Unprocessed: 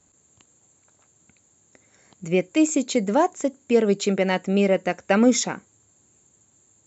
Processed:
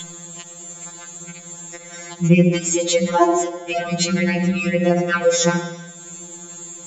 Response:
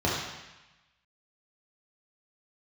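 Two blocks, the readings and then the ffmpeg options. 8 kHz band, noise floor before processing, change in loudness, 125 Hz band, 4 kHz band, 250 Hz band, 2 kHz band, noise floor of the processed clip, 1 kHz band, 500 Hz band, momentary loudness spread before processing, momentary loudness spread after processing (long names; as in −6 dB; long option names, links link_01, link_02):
can't be measured, −62 dBFS, +3.5 dB, +11.0 dB, +6.5 dB, +2.0 dB, +6.0 dB, −39 dBFS, +4.0 dB, +2.0 dB, 8 LU, 18 LU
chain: -filter_complex "[0:a]acompressor=mode=upward:threshold=-32dB:ratio=2.5,aeval=exprs='val(0)+0.0316*sin(2*PI*3400*n/s)':channel_layout=same,asplit=2[link_01][link_02];[1:a]atrim=start_sample=2205,adelay=69[link_03];[link_02][link_03]afir=irnorm=-1:irlink=0,volume=-24dB[link_04];[link_01][link_04]amix=inputs=2:normalize=0,alimiter=level_in=14dB:limit=-1dB:release=50:level=0:latency=1,afftfilt=real='re*2.83*eq(mod(b,8),0)':imag='im*2.83*eq(mod(b,8),0)':win_size=2048:overlap=0.75,volume=-2dB"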